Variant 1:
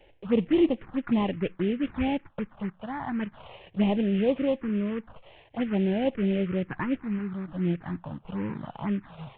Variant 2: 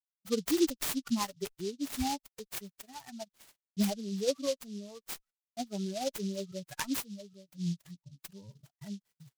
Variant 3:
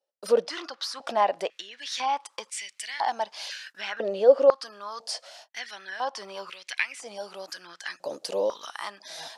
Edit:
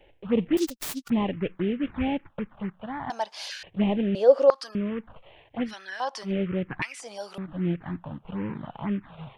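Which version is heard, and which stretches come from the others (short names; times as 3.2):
1
0.57–1.1 from 2
3.1–3.63 from 3
4.15–4.75 from 3
5.69–6.28 from 3, crossfade 0.10 s
6.82–7.38 from 3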